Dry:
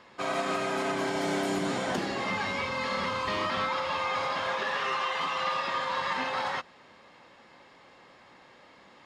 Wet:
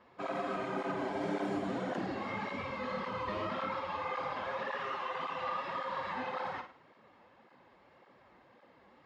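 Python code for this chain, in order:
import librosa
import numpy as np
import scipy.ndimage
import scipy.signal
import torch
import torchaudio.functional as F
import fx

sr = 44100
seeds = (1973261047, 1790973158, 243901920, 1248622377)

y = fx.lowpass(x, sr, hz=1200.0, slope=6)
y = fx.room_flutter(y, sr, wall_m=8.9, rt60_s=0.38)
y = fx.flanger_cancel(y, sr, hz=1.8, depth_ms=7.9)
y = y * librosa.db_to_amplitude(-2.0)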